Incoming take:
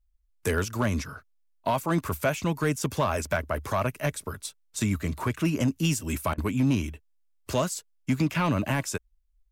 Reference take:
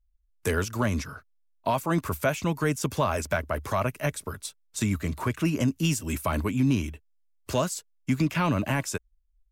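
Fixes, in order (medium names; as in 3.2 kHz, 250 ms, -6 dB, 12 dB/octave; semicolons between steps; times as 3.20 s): clip repair -17 dBFS; interpolate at 6.34 s, 39 ms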